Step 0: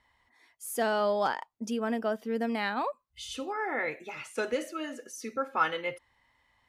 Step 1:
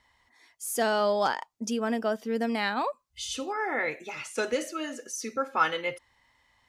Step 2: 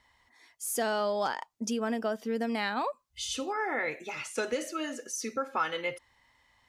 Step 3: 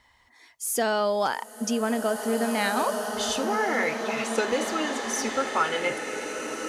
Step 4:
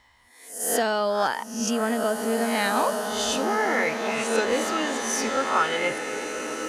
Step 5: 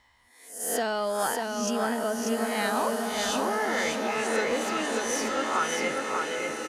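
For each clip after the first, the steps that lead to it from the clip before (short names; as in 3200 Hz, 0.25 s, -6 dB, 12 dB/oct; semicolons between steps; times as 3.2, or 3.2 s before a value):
bell 6200 Hz +6.5 dB 1.3 oct; gain +2 dB
compressor 2.5:1, threshold -28 dBFS, peak gain reduction 7 dB
bloom reverb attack 2.09 s, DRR 3 dB; gain +5 dB
spectral swells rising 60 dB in 0.55 s
in parallel at -11 dB: soft clip -21.5 dBFS, distortion -13 dB; on the sum: echo 0.591 s -4 dB; gain -6 dB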